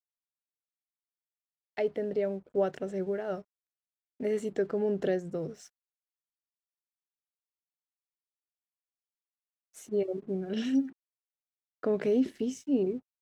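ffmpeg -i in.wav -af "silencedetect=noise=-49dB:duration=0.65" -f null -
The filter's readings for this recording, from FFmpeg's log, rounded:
silence_start: 0.00
silence_end: 1.77 | silence_duration: 1.77
silence_start: 3.42
silence_end: 4.20 | silence_duration: 0.78
silence_start: 5.68
silence_end: 9.75 | silence_duration: 4.07
silence_start: 10.92
silence_end: 11.83 | silence_duration: 0.91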